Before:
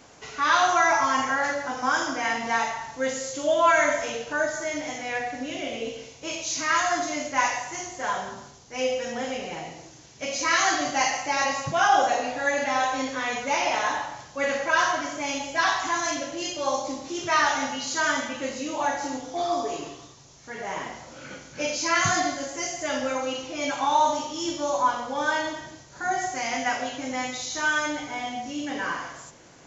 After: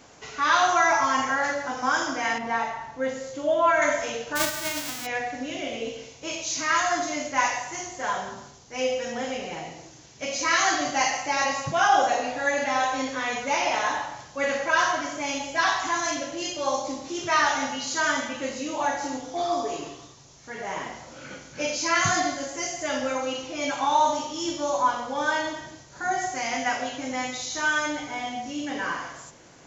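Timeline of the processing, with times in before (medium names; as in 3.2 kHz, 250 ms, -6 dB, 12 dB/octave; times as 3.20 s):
2.38–3.82 s: low-pass 1.7 kHz 6 dB/octave
4.35–5.05 s: formants flattened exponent 0.1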